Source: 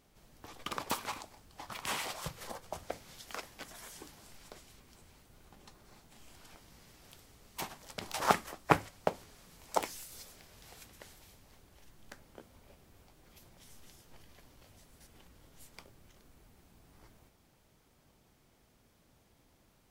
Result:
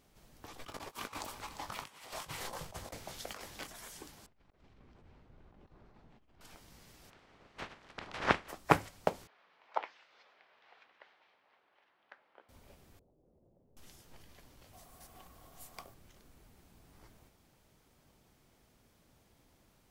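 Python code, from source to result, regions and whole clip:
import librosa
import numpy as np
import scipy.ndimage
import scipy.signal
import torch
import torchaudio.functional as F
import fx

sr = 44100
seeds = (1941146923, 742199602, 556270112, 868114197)

y = fx.chain(x, sr, fx.echo_single(ms=349, db=-11.0),
    fx.over_compress(threshold_db=-45.0, ratio=-0.5),
    fx.doubler(ms=20.0, db=-11.5), at=(0.58, 3.67))
y = fx.chain(y, sr, fx.over_compress(threshold_db=-59.0, ratio=-0.5),
    fx.spacing_loss(db_at_10k=35),
    fx.doppler_dist(depth_ms=0.25), at=(4.26, 6.41))
y = fx.spec_clip(y, sr, under_db=17, at=(7.09, 8.48), fade=0.02)
y = fx.lowpass(y, sr, hz=2400.0, slope=12, at=(7.09, 8.48), fade=0.02)
y = fx.chain(y, sr, fx.bandpass_edges(low_hz=770.0, high_hz=2900.0),
    fx.air_absorb(metres=210.0), at=(9.27, 12.49))
y = fx.chain(y, sr, fx.cheby1_lowpass(hz=550.0, order=3),
    fx.tilt_eq(slope=2.5), at=(12.99, 13.77))
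y = fx.chain(y, sr, fx.high_shelf(hz=11000.0, db=10.0),
    fx.small_body(hz=(730.0, 1100.0), ring_ms=30, db=14), at=(14.73, 15.94))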